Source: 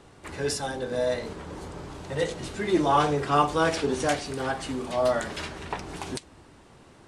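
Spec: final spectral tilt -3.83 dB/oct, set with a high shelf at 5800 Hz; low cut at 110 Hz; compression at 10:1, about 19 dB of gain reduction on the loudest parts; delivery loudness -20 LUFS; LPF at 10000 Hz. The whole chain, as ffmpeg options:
-af "highpass=110,lowpass=10k,highshelf=f=5.8k:g=7,acompressor=threshold=-37dB:ratio=10,volume=21dB"

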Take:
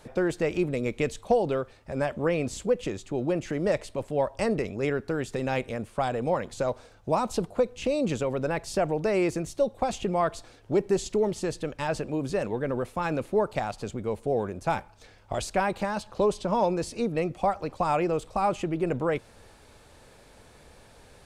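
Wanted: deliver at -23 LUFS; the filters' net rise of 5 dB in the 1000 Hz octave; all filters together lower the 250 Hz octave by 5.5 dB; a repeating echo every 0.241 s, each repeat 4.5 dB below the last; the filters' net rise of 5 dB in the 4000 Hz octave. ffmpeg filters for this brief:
-af "equalizer=f=250:t=o:g=-9,equalizer=f=1k:t=o:g=7,equalizer=f=4k:t=o:g=6,aecho=1:1:241|482|723|964|1205|1446|1687|1928|2169:0.596|0.357|0.214|0.129|0.0772|0.0463|0.0278|0.0167|0.01,volume=3dB"

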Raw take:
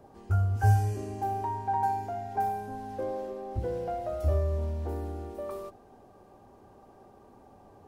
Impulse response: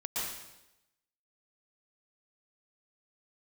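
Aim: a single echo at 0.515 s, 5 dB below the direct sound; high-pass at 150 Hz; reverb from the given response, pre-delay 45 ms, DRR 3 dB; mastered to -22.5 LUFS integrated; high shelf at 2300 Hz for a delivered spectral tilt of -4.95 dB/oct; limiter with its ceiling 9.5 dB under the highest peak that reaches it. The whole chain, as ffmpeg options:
-filter_complex "[0:a]highpass=150,highshelf=f=2.3k:g=8.5,alimiter=level_in=1.5dB:limit=-24dB:level=0:latency=1,volume=-1.5dB,aecho=1:1:515:0.562,asplit=2[a][b];[1:a]atrim=start_sample=2205,adelay=45[c];[b][c]afir=irnorm=-1:irlink=0,volume=-7.5dB[d];[a][d]amix=inputs=2:normalize=0,volume=10dB"

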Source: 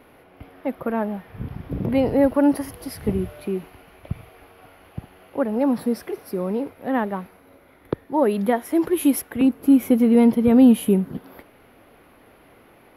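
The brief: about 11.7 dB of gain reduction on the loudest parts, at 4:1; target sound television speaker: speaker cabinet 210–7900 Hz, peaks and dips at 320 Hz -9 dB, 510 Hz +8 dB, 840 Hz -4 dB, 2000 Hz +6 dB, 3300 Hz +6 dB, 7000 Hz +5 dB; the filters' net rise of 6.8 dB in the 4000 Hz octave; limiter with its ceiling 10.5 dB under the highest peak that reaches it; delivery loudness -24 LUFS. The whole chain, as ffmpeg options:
-af "equalizer=f=4k:t=o:g=4,acompressor=threshold=-24dB:ratio=4,alimiter=limit=-22.5dB:level=0:latency=1,highpass=f=210:w=0.5412,highpass=f=210:w=1.3066,equalizer=f=320:t=q:w=4:g=-9,equalizer=f=510:t=q:w=4:g=8,equalizer=f=840:t=q:w=4:g=-4,equalizer=f=2k:t=q:w=4:g=6,equalizer=f=3.3k:t=q:w=4:g=6,equalizer=f=7k:t=q:w=4:g=5,lowpass=f=7.9k:w=0.5412,lowpass=f=7.9k:w=1.3066,volume=9dB"

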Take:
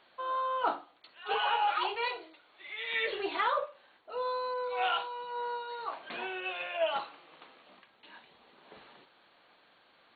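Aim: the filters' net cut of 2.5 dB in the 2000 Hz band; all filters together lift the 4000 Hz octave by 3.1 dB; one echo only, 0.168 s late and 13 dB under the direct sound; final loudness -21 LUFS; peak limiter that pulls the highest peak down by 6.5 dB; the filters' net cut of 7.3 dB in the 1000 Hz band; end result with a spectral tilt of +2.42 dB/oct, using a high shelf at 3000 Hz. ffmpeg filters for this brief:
-af "equalizer=f=1k:t=o:g=-9,equalizer=f=2k:t=o:g=-3.5,highshelf=f=3k:g=4,equalizer=f=4k:t=o:g=4,alimiter=level_in=3dB:limit=-24dB:level=0:latency=1,volume=-3dB,aecho=1:1:168:0.224,volume=16.5dB"

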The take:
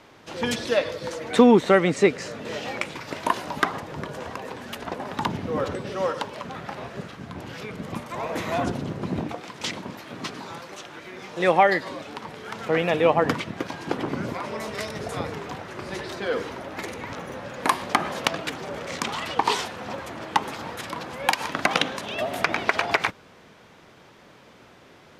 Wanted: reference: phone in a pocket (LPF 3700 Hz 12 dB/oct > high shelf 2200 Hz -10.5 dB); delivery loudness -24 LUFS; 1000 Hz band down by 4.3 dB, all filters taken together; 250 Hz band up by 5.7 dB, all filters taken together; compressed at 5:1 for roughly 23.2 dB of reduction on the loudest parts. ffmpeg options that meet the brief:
-af "equalizer=f=250:t=o:g=7,equalizer=f=1k:t=o:g=-4,acompressor=threshold=-33dB:ratio=5,lowpass=3.7k,highshelf=f=2.2k:g=-10.5,volume=14dB"

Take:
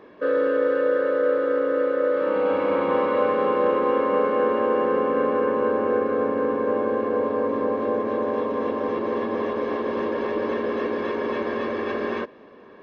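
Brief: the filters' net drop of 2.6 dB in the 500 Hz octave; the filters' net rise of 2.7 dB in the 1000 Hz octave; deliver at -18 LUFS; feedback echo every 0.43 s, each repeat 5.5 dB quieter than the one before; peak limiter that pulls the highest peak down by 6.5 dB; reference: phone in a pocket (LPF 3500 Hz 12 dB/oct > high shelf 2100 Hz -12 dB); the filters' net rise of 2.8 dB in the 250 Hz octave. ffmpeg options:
-af "equalizer=f=250:t=o:g=4.5,equalizer=f=500:t=o:g=-4.5,equalizer=f=1k:t=o:g=6.5,alimiter=limit=-14.5dB:level=0:latency=1,lowpass=3.5k,highshelf=f=2.1k:g=-12,aecho=1:1:430|860|1290|1720|2150|2580|3010:0.531|0.281|0.149|0.079|0.0419|0.0222|0.0118,volume=7.5dB"

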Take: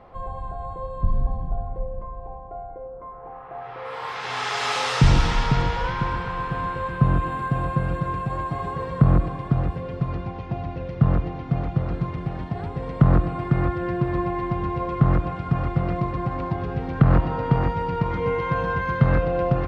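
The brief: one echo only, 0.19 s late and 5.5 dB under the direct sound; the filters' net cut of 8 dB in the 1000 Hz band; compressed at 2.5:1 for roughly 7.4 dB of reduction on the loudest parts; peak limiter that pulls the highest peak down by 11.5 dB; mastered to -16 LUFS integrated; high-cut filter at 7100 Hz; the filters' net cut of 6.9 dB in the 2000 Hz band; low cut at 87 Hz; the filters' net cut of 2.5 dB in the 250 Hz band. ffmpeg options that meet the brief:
-af "highpass=87,lowpass=7.1k,equalizer=f=250:t=o:g=-3.5,equalizer=f=1k:t=o:g=-8,equalizer=f=2k:t=o:g=-6,acompressor=threshold=-24dB:ratio=2.5,alimiter=limit=-22.5dB:level=0:latency=1,aecho=1:1:190:0.531,volume=16dB"

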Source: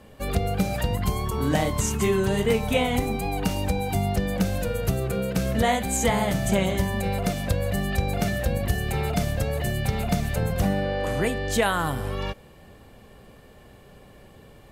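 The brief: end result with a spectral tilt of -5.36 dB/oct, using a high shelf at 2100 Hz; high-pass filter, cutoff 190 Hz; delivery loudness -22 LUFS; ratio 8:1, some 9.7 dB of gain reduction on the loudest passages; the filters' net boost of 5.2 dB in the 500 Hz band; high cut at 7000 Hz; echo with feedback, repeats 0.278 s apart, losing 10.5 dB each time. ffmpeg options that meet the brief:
-af "highpass=190,lowpass=7k,equalizer=f=500:t=o:g=6.5,highshelf=f=2.1k:g=-3,acompressor=threshold=-23dB:ratio=8,aecho=1:1:278|556|834:0.299|0.0896|0.0269,volume=6dB"

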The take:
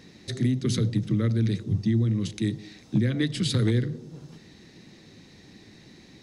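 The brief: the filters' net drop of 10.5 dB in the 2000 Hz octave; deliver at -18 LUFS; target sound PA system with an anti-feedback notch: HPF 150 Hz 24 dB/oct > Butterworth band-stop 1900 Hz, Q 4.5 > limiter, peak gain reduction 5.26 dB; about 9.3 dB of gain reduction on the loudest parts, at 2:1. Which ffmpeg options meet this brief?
-af "equalizer=f=2k:t=o:g=-8,acompressor=threshold=-37dB:ratio=2,highpass=f=150:w=0.5412,highpass=f=150:w=1.3066,asuperstop=centerf=1900:order=8:qfactor=4.5,volume=21.5dB,alimiter=limit=-7.5dB:level=0:latency=1"

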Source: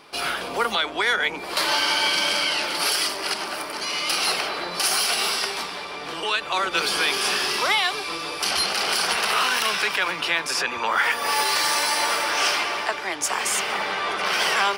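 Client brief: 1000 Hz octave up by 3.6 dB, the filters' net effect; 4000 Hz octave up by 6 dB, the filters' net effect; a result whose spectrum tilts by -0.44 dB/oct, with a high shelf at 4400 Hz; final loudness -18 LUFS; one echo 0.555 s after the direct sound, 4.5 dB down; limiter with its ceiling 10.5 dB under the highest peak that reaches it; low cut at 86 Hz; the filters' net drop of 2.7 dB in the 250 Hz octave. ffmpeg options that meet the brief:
-af "highpass=86,equalizer=f=250:t=o:g=-4.5,equalizer=f=1k:t=o:g=4,equalizer=f=4k:t=o:g=3,highshelf=f=4.4k:g=8,alimiter=limit=-14dB:level=0:latency=1,aecho=1:1:555:0.596,volume=2.5dB"

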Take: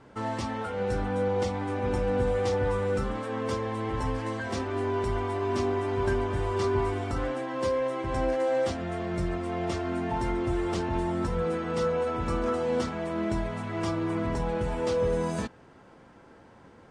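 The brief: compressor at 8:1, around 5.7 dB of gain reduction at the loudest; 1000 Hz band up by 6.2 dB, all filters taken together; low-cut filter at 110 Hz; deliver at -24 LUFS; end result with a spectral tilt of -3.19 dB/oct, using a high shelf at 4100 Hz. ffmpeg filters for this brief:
-af "highpass=110,equalizer=f=1k:t=o:g=8,highshelf=f=4.1k:g=-8.5,acompressor=threshold=-27dB:ratio=8,volume=7.5dB"

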